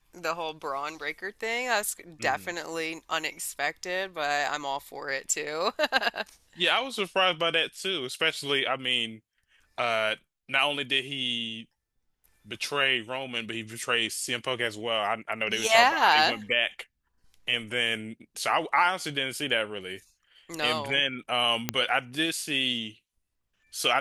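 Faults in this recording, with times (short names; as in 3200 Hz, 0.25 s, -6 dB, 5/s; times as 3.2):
21.69 pop -8 dBFS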